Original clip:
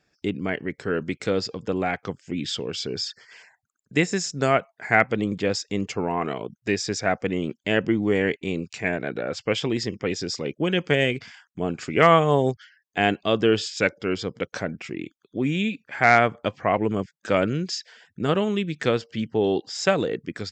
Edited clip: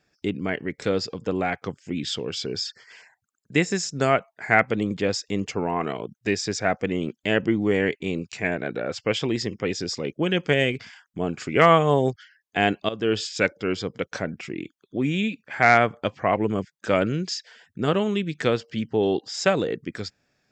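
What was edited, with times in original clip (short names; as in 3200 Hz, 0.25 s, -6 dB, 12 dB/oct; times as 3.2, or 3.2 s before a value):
0.82–1.23 cut
13.3–13.63 fade in, from -15 dB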